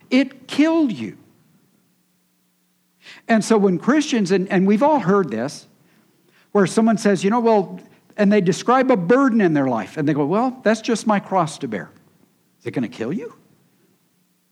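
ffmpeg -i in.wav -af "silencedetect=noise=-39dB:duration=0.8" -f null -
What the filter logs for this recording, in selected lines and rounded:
silence_start: 1.19
silence_end: 3.06 | silence_duration: 1.87
silence_start: 5.63
silence_end: 6.55 | silence_duration: 0.91
silence_start: 13.33
silence_end: 14.52 | silence_duration: 1.19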